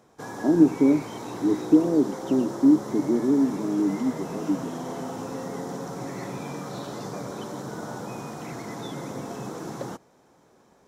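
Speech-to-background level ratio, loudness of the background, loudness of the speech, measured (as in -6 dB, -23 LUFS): 12.0 dB, -35.0 LUFS, -23.0 LUFS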